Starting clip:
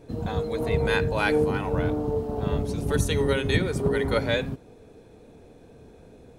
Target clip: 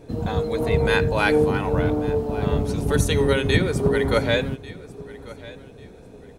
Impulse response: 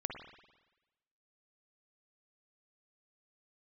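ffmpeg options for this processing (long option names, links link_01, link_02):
-af "aecho=1:1:1143|2286:0.112|0.0314,volume=4dB"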